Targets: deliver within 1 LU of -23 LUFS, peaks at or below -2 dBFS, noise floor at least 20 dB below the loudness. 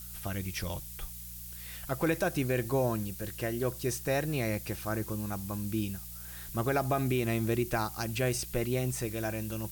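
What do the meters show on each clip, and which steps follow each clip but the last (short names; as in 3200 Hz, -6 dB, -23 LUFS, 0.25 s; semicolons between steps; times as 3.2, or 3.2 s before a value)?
hum 60 Hz; harmonics up to 180 Hz; hum level -47 dBFS; noise floor -44 dBFS; noise floor target -53 dBFS; loudness -33.0 LUFS; peak -17.5 dBFS; loudness target -23.0 LUFS
-> de-hum 60 Hz, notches 3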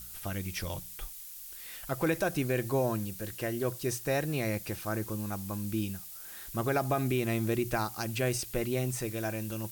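hum none; noise floor -46 dBFS; noise floor target -53 dBFS
-> denoiser 7 dB, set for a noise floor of -46 dBFS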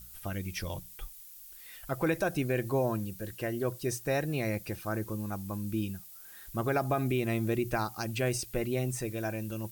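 noise floor -50 dBFS; noise floor target -53 dBFS
-> denoiser 6 dB, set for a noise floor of -50 dBFS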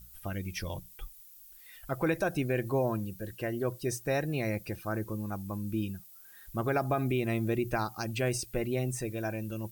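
noise floor -53 dBFS; loudness -33.0 LUFS; peak -18.0 dBFS; loudness target -23.0 LUFS
-> gain +10 dB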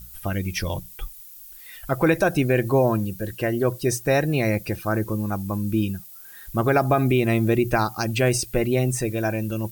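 loudness -23.0 LUFS; peak -8.0 dBFS; noise floor -43 dBFS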